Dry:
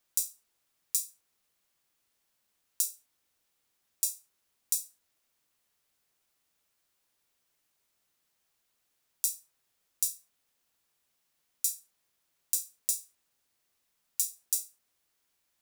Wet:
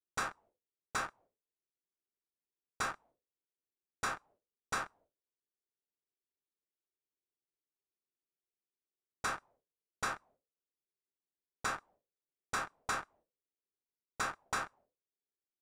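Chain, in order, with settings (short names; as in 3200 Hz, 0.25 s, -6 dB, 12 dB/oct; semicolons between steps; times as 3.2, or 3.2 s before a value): expander -58 dBFS; compressor 6:1, threshold -32 dBFS, peak gain reduction 9 dB; sample leveller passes 3; envelope low-pass 390–1300 Hz up, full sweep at -29.5 dBFS; gain +16 dB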